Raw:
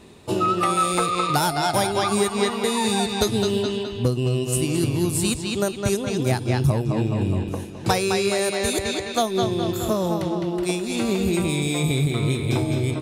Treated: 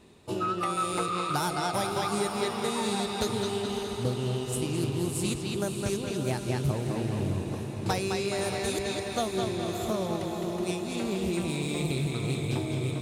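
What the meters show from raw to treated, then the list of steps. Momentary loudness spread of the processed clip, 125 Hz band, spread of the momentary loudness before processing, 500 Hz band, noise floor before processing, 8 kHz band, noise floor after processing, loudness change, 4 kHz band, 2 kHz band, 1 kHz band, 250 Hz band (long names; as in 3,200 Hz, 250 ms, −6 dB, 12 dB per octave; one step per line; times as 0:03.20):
3 LU, −7.5 dB, 4 LU, −7.0 dB, −32 dBFS, −8.5 dB, −36 dBFS, −7.5 dB, −7.5 dB, −7.5 dB, −7.5 dB, −7.5 dB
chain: feedback delay with all-pass diffusion 583 ms, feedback 58%, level −7 dB
highs frequency-modulated by the lows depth 0.2 ms
level −8.5 dB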